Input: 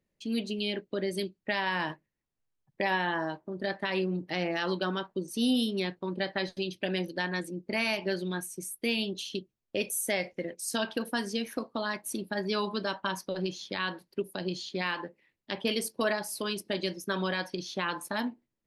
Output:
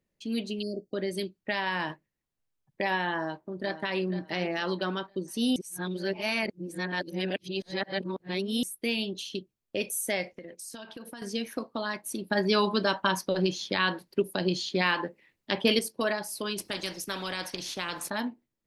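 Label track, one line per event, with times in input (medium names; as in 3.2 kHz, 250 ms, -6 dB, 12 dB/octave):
0.620000	0.940000	spectral selection erased 760–4300 Hz
3.170000	3.980000	echo throw 480 ms, feedback 30%, level -11.5 dB
5.560000	8.630000	reverse
10.240000	11.220000	compression 12:1, threshold -38 dBFS
12.300000	15.790000	gain +6 dB
16.580000	18.100000	spectrum-flattening compressor 2:1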